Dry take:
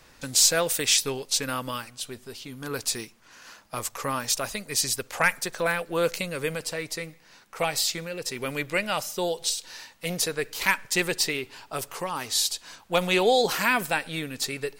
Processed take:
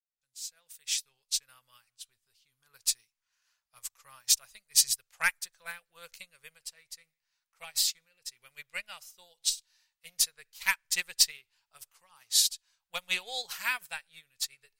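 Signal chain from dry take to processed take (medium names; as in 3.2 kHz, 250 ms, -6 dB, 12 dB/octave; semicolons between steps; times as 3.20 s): fade-in on the opening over 1.89 s; amplifier tone stack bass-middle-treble 10-0-10; upward expansion 2.5:1, over -42 dBFS; trim +5 dB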